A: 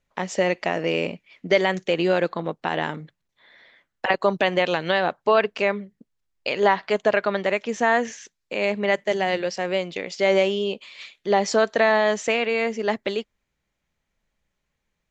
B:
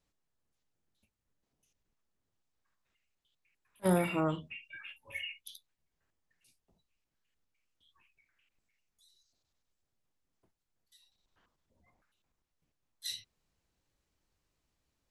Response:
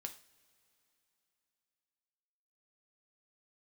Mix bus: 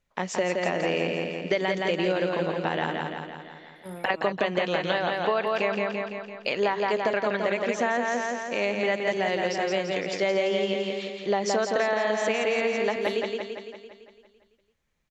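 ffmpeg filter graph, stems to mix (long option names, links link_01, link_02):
-filter_complex "[0:a]volume=-1.5dB,asplit=2[link_01][link_02];[link_02]volume=-4.5dB[link_03];[1:a]volume=-12dB[link_04];[link_03]aecho=0:1:169|338|507|676|845|1014|1183|1352|1521:1|0.57|0.325|0.185|0.106|0.0602|0.0343|0.0195|0.0111[link_05];[link_01][link_04][link_05]amix=inputs=3:normalize=0,acompressor=threshold=-21dB:ratio=6"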